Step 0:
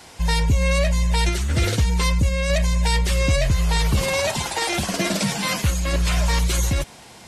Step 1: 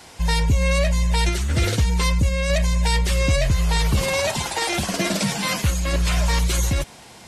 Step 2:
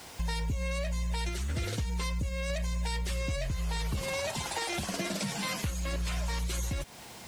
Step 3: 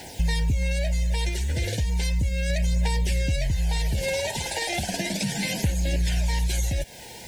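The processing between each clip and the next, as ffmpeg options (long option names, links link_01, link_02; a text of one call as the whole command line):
ffmpeg -i in.wav -af anull out.wav
ffmpeg -i in.wav -af "acrusher=bits=7:mix=0:aa=0.000001,acompressor=threshold=-28dB:ratio=4,volume=-3.5dB" out.wav
ffmpeg -i in.wav -af "aphaser=in_gain=1:out_gain=1:delay=2.2:decay=0.38:speed=0.35:type=triangular,asuperstop=centerf=1200:order=8:qfactor=2,volume=5.5dB" out.wav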